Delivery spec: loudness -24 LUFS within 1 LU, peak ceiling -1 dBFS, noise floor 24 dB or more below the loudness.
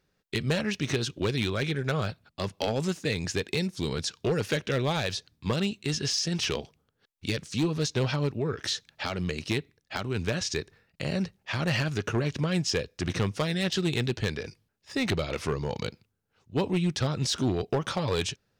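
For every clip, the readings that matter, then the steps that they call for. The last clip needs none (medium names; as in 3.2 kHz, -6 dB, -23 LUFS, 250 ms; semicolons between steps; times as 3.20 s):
clipped samples 1.0%; clipping level -20.0 dBFS; loudness -29.5 LUFS; peak level -20.0 dBFS; loudness target -24.0 LUFS
-> clip repair -20 dBFS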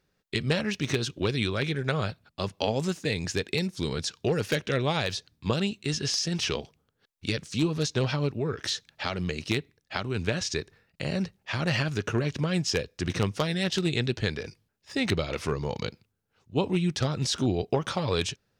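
clipped samples 0.0%; loudness -29.0 LUFS; peak level -11.0 dBFS; loudness target -24.0 LUFS
-> trim +5 dB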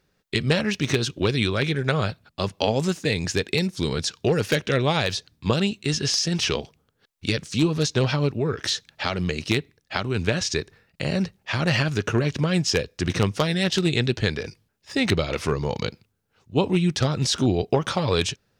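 loudness -24.0 LUFS; peak level -6.0 dBFS; noise floor -71 dBFS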